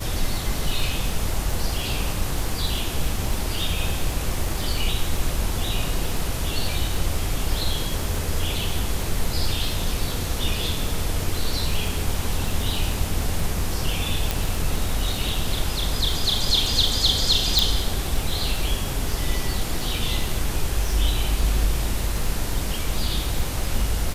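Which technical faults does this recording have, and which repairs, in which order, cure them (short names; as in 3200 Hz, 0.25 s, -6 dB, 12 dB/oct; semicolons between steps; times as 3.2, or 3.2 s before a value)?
crackle 38/s -27 dBFS
14.31 pop
17.59 pop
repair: de-click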